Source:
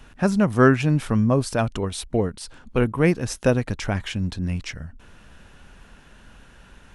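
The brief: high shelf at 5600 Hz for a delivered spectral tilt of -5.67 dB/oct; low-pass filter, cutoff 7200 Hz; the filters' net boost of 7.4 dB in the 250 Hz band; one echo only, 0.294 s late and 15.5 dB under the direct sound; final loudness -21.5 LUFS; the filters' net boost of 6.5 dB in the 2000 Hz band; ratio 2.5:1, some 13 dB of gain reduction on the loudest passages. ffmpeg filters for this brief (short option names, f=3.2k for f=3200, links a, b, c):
-af "lowpass=7.2k,equalizer=f=250:t=o:g=9,equalizer=f=2k:t=o:g=8,highshelf=f=5.6k:g=5,acompressor=threshold=-24dB:ratio=2.5,aecho=1:1:294:0.168,volume=4.5dB"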